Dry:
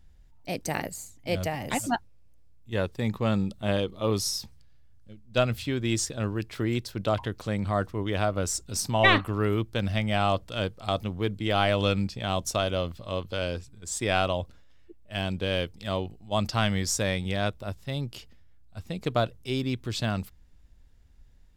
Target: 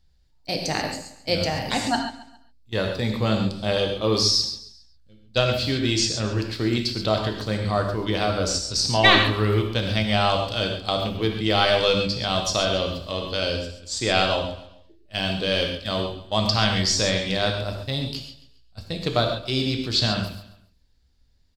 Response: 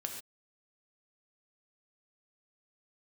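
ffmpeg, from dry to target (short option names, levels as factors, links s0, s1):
-filter_complex "[0:a]acrossover=split=6900[s0][s1];[s1]acompressor=threshold=0.00178:ratio=6[s2];[s0][s2]amix=inputs=2:normalize=0,bandreject=f=50:t=h:w=6,bandreject=f=100:t=h:w=6,bandreject=f=150:t=h:w=6,bandreject=f=200:t=h:w=6,bandreject=f=250:t=h:w=6,bandreject=f=300:t=h:w=6,asplit=2[s3][s4];[s4]asoftclip=type=tanh:threshold=0.0668,volume=0.251[s5];[s3][s5]amix=inputs=2:normalize=0,agate=range=0.316:threshold=0.0126:ratio=16:detection=peak,equalizer=f=4500:t=o:w=0.58:g=14.5,aecho=1:1:136|272|408:0.158|0.0618|0.0241[s6];[1:a]atrim=start_sample=2205[s7];[s6][s7]afir=irnorm=-1:irlink=0,volume=1.41"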